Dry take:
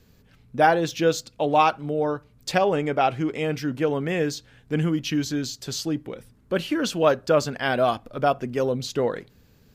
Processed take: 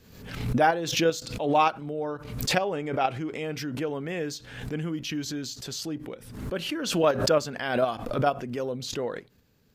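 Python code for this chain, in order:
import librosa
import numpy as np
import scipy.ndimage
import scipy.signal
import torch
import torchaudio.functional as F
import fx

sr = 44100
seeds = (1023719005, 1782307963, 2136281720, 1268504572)

p1 = fx.level_steps(x, sr, step_db=18)
p2 = x + (p1 * librosa.db_to_amplitude(2.0))
p3 = fx.low_shelf(p2, sr, hz=100.0, db=-6.0)
p4 = fx.pre_swell(p3, sr, db_per_s=63.0)
y = p4 * librosa.db_to_amplitude(-9.0)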